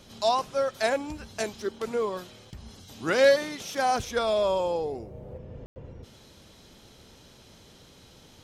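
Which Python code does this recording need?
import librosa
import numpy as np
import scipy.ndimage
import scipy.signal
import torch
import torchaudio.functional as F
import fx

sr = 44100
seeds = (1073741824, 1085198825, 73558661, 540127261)

y = fx.fix_ambience(x, sr, seeds[0], print_start_s=7.88, print_end_s=8.38, start_s=5.66, end_s=5.76)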